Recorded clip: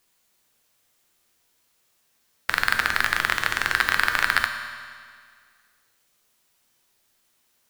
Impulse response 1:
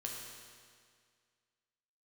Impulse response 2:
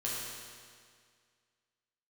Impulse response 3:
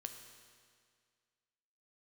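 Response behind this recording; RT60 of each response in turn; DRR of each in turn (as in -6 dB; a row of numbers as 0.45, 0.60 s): 3; 2.0, 2.0, 2.0 s; -1.5, -6.5, 5.5 dB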